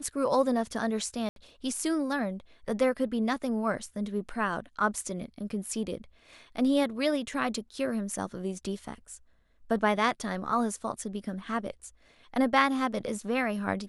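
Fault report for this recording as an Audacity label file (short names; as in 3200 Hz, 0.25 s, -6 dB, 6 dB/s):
1.290000	1.360000	gap 72 ms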